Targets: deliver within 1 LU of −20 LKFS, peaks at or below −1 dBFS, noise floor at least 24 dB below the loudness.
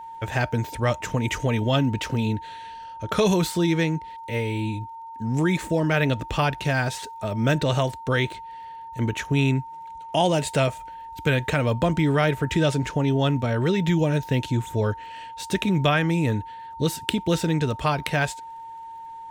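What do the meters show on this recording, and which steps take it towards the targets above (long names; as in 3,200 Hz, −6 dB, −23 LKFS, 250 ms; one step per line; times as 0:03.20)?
crackle rate 29 per second; interfering tone 910 Hz; level of the tone −36 dBFS; integrated loudness −24.0 LKFS; sample peak −5.5 dBFS; target loudness −20.0 LKFS
→ click removal
notch filter 910 Hz, Q 30
level +4 dB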